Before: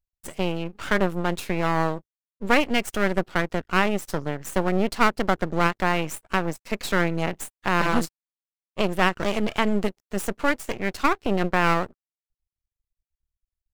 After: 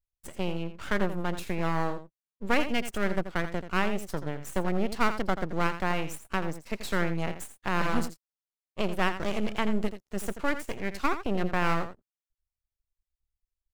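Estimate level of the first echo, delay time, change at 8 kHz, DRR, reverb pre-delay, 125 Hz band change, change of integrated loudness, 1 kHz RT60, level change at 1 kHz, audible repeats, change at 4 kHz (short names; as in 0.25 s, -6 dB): -11.0 dB, 84 ms, -6.5 dB, none, none, -4.5 dB, -6.0 dB, none, -6.5 dB, 1, -6.5 dB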